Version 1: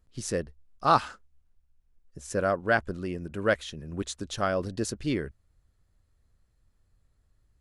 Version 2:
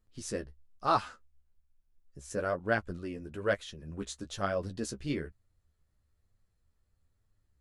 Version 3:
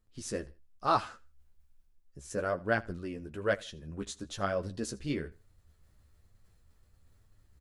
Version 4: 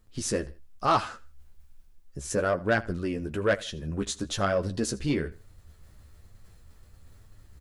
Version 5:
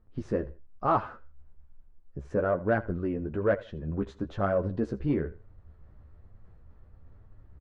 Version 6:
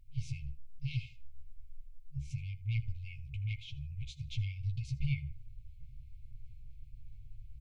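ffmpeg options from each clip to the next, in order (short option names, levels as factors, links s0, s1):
-af "flanger=delay=8.7:depth=7:regen=19:speed=1.1:shape=triangular,volume=0.794"
-af "areverse,acompressor=mode=upward:threshold=0.00316:ratio=2.5,areverse,aecho=1:1:80|160:0.0794|0.0222"
-filter_complex "[0:a]asplit=2[s0][s1];[s1]acompressor=threshold=0.01:ratio=6,volume=1[s2];[s0][s2]amix=inputs=2:normalize=0,asoftclip=type=tanh:threshold=0.106,volume=1.78"
-af "lowpass=1200,aecho=1:1:78:0.0668"
-af "afftfilt=real='re*(1-between(b*sr/4096,150,2100))':imag='im*(1-between(b*sr/4096,150,2100))':win_size=4096:overlap=0.75,equalizer=f=83:t=o:w=0.46:g=-14.5,volume=2.11"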